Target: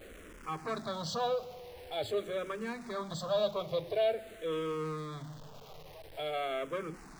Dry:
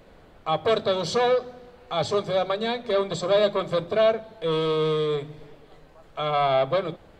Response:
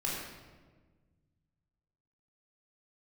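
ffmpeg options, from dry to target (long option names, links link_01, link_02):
-filter_complex "[0:a]aeval=exprs='val(0)+0.5*0.0168*sgn(val(0))':channel_layout=same,asplit=2[link_01][link_02];[link_02]afreqshift=-0.47[link_03];[link_01][link_03]amix=inputs=2:normalize=1,volume=-8.5dB"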